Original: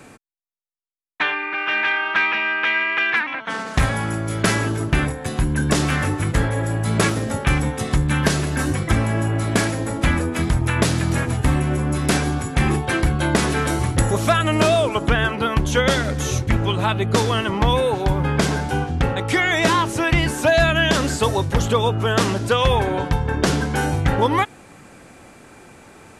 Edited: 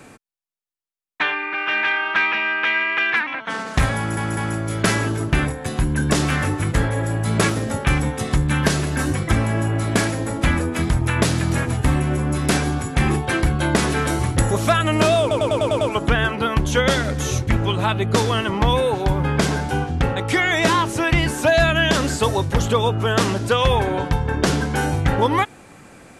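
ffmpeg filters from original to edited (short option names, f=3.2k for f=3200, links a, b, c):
-filter_complex "[0:a]asplit=9[a][b][c][d][e][f][g][h][i];[a]atrim=end=4.172[j];[b]atrim=start=3.968:end=4.172[k];[c]atrim=start=3.968:end=14.912[l];[d]atrim=start=14.808:end=14.912[m];[e]atrim=start=14.808:end=14.912[n];[f]atrim=start=14.808:end=14.912[o];[g]atrim=start=14.808:end=14.912[p];[h]atrim=start=14.808:end=14.912[q];[i]atrim=start=14.808[r];[j][k]acrossfade=d=0.004:c1=hsin:c2=hsin[s];[s][l]acrossfade=d=0.004:c1=hsin:c2=hsin[t];[t][m]acrossfade=d=0.004:c1=hsin:c2=hsin[u];[u][n]acrossfade=d=0.004:c1=hsin:c2=hsin[v];[v][o]acrossfade=d=0.004:c1=hsin:c2=hsin[w];[w][p]acrossfade=d=0.004:c1=hsin:c2=hsin[x];[x][q]acrossfade=d=0.004:c1=hsin:c2=hsin[y];[y][r]acrossfade=d=0.004:c1=hsin:c2=hsin"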